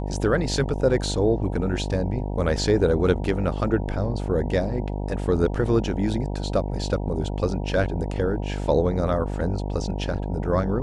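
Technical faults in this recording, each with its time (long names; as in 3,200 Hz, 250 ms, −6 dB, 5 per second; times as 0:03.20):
mains buzz 50 Hz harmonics 19 −28 dBFS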